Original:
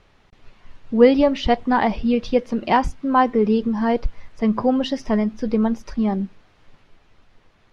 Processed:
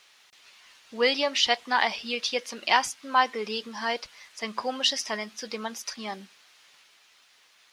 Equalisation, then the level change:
high-pass filter 1,500 Hz 6 dB per octave
spectral tilt +2 dB per octave
high-shelf EQ 3,300 Hz +9.5 dB
0.0 dB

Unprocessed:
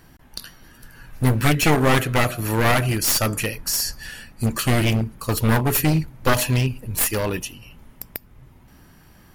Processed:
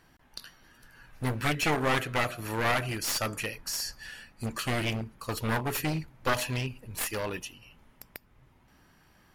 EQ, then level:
low-shelf EQ 400 Hz −8 dB
high-shelf EQ 8,400 Hz −11 dB
−6.0 dB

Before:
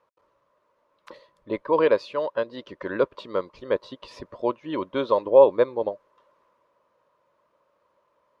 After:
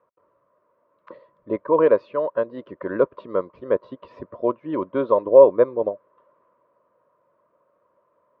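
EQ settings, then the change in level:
high-pass filter 82 Hz
Butterworth band-reject 840 Hz, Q 6.5
low-pass filter 1,300 Hz 12 dB per octave
+3.5 dB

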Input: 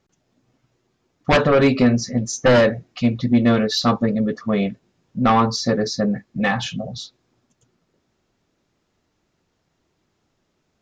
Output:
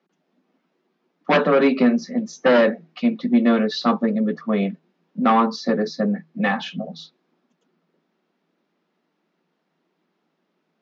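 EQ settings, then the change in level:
Chebyshev high-pass filter 160 Hz, order 10
low-pass filter 4,700 Hz 12 dB per octave
high-frequency loss of the air 91 metres
0.0 dB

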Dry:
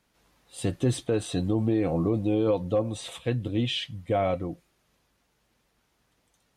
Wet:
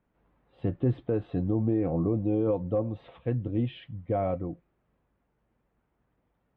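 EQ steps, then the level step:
high-frequency loss of the air 460 metres
head-to-tape spacing loss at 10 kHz 29 dB
0.0 dB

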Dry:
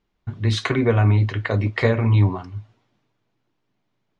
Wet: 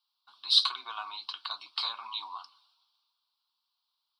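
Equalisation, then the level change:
four-pole ladder high-pass 910 Hz, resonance 50%
high shelf with overshoot 3,000 Hz +14 dB, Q 3
phaser with its sweep stopped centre 1,900 Hz, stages 6
0.0 dB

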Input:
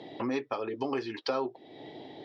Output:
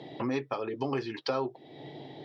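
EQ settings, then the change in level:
parametric band 140 Hz +12.5 dB 0.3 octaves
0.0 dB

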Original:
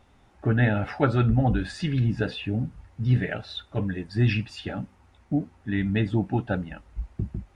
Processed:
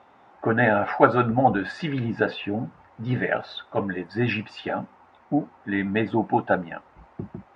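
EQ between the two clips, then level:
high-pass filter 150 Hz 12 dB per octave
high-frequency loss of the air 75 metres
parametric band 900 Hz +15 dB 2.6 octaves
−3.0 dB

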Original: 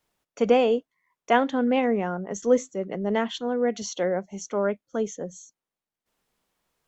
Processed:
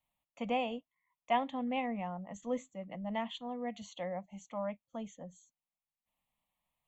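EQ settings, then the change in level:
phaser with its sweep stopped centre 1,500 Hz, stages 6
−7.5 dB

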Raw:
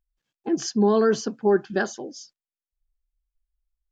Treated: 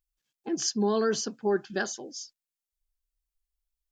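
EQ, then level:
high-shelf EQ 2,800 Hz +11.5 dB
−7.0 dB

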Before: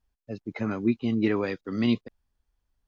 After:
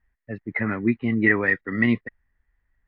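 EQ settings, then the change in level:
low-pass with resonance 1,900 Hz, resonance Q 13
low-shelf EQ 210 Hz +5.5 dB
0.0 dB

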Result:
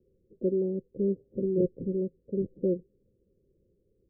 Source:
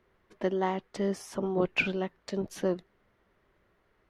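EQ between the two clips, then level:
Chebyshev low-pass with heavy ripple 540 Hz, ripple 3 dB
+3.5 dB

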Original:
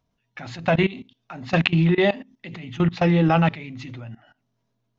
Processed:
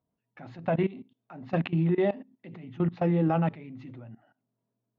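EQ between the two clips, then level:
resonant band-pass 340 Hz, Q 0.51
−5.0 dB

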